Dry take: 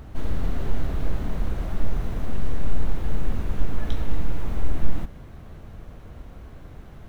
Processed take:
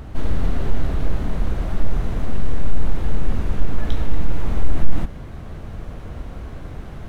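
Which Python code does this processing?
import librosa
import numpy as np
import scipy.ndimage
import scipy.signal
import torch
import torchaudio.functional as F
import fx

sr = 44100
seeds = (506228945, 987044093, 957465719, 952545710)

y = fx.rider(x, sr, range_db=4, speed_s=2.0)
y = 10.0 ** (-5.0 / 20.0) * np.tanh(y / 10.0 ** (-5.0 / 20.0))
y = np.interp(np.arange(len(y)), np.arange(len(y))[::2], y[::2])
y = F.gain(torch.from_numpy(y), 5.0).numpy()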